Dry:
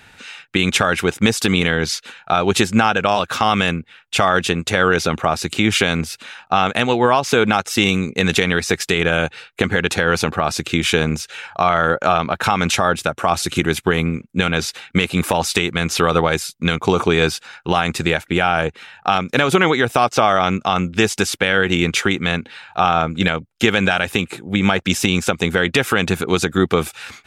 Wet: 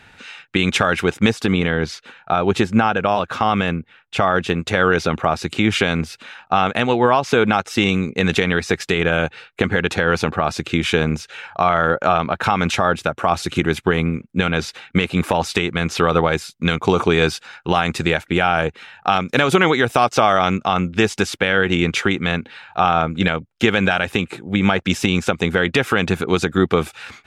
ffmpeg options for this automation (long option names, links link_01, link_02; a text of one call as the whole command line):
ffmpeg -i in.wav -af "asetnsamples=nb_out_samples=441:pad=0,asendcmd='1.32 lowpass f 1600;4.5 lowpass f 3000;16.52 lowpass f 5700;19.2 lowpass f 9400;20.59 lowpass f 3600',lowpass=frequency=4100:poles=1" out.wav